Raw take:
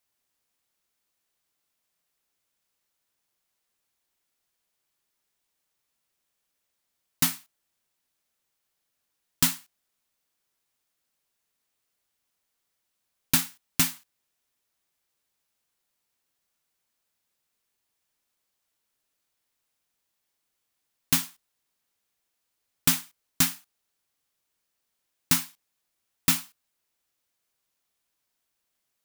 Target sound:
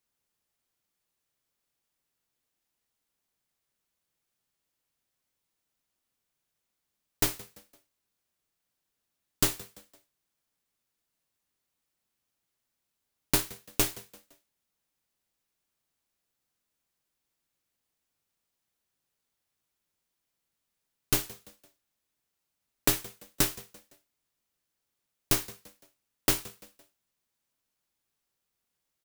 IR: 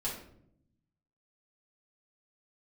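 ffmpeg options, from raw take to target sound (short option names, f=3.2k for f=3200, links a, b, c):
-filter_complex "[0:a]lowshelf=f=230:g=8,asplit=2[a][b];[b]asplit=3[c][d][e];[c]adelay=170,afreqshift=89,volume=-20.5dB[f];[d]adelay=340,afreqshift=178,volume=-28.2dB[g];[e]adelay=510,afreqshift=267,volume=-36dB[h];[f][g][h]amix=inputs=3:normalize=0[i];[a][i]amix=inputs=2:normalize=0,aeval=exprs='val(0)*sgn(sin(2*PI*140*n/s))':c=same,volume=-4dB"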